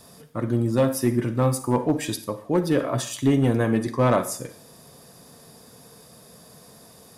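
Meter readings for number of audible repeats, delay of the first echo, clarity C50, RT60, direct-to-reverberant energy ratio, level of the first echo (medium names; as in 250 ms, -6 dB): no echo, no echo, 12.0 dB, 0.50 s, 11.0 dB, no echo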